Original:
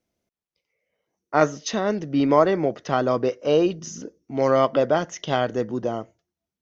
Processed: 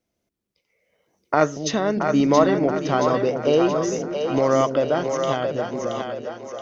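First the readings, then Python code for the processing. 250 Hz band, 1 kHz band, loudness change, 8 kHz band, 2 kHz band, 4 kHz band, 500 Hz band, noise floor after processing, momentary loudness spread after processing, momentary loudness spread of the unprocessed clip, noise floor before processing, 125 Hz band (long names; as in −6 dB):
+2.5 dB, +1.5 dB, +1.0 dB, can't be measured, +1.5 dB, +1.5 dB, +1.5 dB, −79 dBFS, 10 LU, 11 LU, below −85 dBFS, +2.0 dB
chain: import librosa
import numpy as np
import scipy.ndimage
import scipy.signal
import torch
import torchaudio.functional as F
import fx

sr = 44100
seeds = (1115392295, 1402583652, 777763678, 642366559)

y = fx.fade_out_tail(x, sr, length_s=2.15)
y = fx.recorder_agc(y, sr, target_db=-11.0, rise_db_per_s=9.0, max_gain_db=30)
y = fx.echo_split(y, sr, split_hz=430.0, low_ms=230, high_ms=675, feedback_pct=52, wet_db=-5)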